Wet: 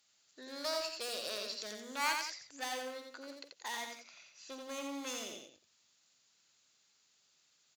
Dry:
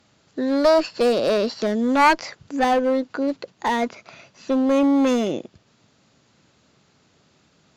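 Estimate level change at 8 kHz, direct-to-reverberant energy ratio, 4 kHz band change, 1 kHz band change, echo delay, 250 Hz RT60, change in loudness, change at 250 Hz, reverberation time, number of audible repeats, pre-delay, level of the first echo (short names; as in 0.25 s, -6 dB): -3.5 dB, none, -7.5 dB, -20.0 dB, 47 ms, none, -19.0 dB, -28.5 dB, none, 3, none, -17.5 dB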